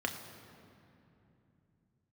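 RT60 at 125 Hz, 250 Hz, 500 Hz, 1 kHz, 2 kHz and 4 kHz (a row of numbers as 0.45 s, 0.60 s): no reading, 3.8 s, 3.1 s, 2.7 s, 2.4 s, 1.7 s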